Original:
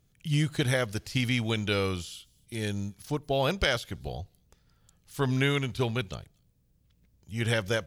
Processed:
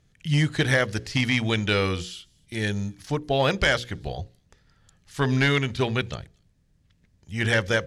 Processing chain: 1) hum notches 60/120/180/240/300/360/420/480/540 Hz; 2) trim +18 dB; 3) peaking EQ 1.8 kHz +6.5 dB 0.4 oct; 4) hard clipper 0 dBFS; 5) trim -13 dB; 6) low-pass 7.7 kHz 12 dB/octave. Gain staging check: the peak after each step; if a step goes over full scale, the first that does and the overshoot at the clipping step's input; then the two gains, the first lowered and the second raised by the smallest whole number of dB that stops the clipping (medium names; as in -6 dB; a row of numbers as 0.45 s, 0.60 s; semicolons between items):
-10.0 dBFS, +8.0 dBFS, +9.5 dBFS, 0.0 dBFS, -13.0 dBFS, -12.0 dBFS; step 2, 9.5 dB; step 2 +8 dB, step 5 -3 dB